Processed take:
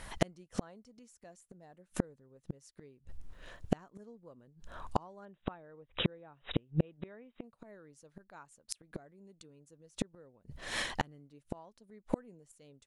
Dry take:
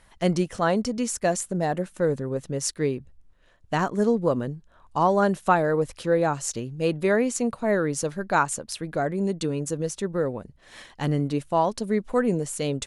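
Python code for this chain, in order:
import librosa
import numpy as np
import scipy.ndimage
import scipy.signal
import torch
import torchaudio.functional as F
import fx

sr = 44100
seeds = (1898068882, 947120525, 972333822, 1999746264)

y = fx.brickwall_lowpass(x, sr, high_hz=3900.0, at=(5.25, 7.44))
y = fx.gate_flip(y, sr, shuts_db=-23.0, range_db=-41)
y = y * librosa.db_to_amplitude(9.5)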